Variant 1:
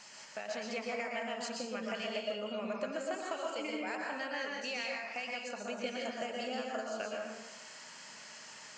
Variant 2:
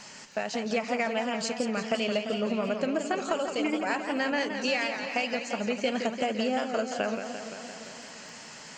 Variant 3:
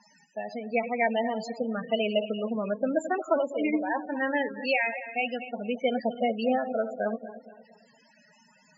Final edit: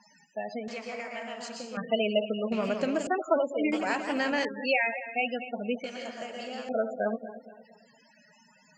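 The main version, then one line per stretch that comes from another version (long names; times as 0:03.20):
3
0:00.68–0:01.77: punch in from 1
0:02.52–0:03.07: punch in from 2
0:03.72–0:04.45: punch in from 2
0:05.84–0:06.69: punch in from 1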